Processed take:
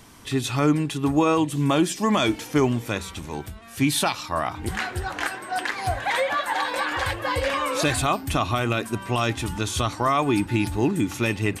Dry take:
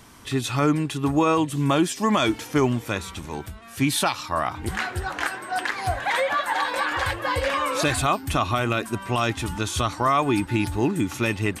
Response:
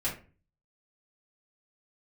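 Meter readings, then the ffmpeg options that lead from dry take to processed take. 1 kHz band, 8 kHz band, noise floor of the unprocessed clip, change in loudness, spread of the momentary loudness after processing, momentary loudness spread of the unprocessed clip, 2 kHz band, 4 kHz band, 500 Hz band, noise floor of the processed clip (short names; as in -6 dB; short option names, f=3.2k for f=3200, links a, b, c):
-1.0 dB, +0.5 dB, -41 dBFS, 0.0 dB, 7 LU, 7 LU, -1.0 dB, +0.5 dB, 0.0 dB, -40 dBFS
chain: -filter_complex "[0:a]equalizer=f=1.3k:w=1.5:g=-2.5,asplit=2[a][b];[1:a]atrim=start_sample=2205[c];[b][c]afir=irnorm=-1:irlink=0,volume=-23dB[d];[a][d]amix=inputs=2:normalize=0"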